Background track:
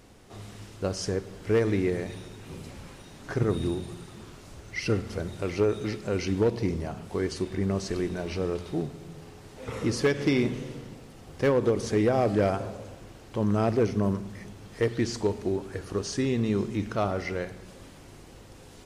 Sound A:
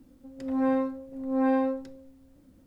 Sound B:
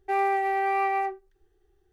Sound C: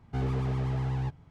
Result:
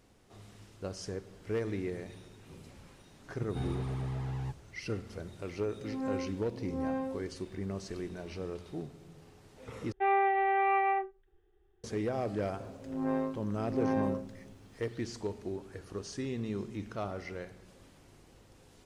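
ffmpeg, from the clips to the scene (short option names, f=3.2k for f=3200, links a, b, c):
-filter_complex "[1:a]asplit=2[a][b];[0:a]volume=-10dB[c];[2:a]aresample=8000,aresample=44100[d];[b]tremolo=f=110:d=0.621[e];[c]asplit=2[f][g];[f]atrim=end=9.924[h];[d]atrim=end=1.92,asetpts=PTS-STARTPTS,volume=-2.5dB[i];[g]atrim=start=11.836[j];[3:a]atrim=end=1.3,asetpts=PTS-STARTPTS,volume=-6dB,afade=t=in:d=0.004:c=hsin,afade=t=out:st=1.296:d=0.004:c=hsin,adelay=3420[k];[a]atrim=end=2.66,asetpts=PTS-STARTPTS,volume=-10dB,afade=t=in:d=0.004:c=hsin,afade=t=out:st=2.656:d=0.004:c=hsin,adelay=238581S[l];[e]atrim=end=2.66,asetpts=PTS-STARTPTS,volume=-4dB,afade=t=in:d=0.004:c=hsin,afade=t=out:st=2.656:d=0.004:c=hsin,adelay=12440[m];[h][i]acrossfade=d=0.004:c1=hsin:c2=hsin[n];[n][j]acrossfade=d=0.004:c1=hsin:c2=hsin[o];[o][k][l][m]amix=inputs=4:normalize=0"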